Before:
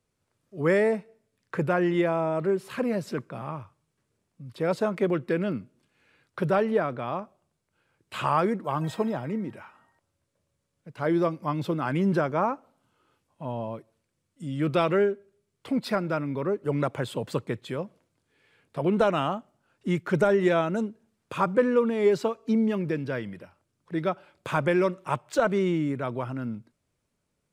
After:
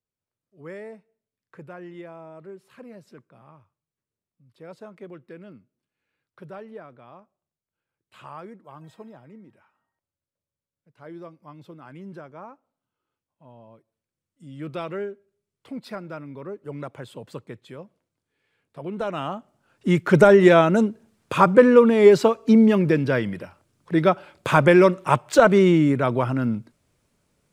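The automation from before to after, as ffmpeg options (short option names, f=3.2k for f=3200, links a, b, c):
-af "volume=9dB,afade=t=in:st=13.64:d=0.98:silence=0.398107,afade=t=in:st=18.94:d=0.41:silence=0.446684,afade=t=in:st=19.35:d=0.85:silence=0.316228"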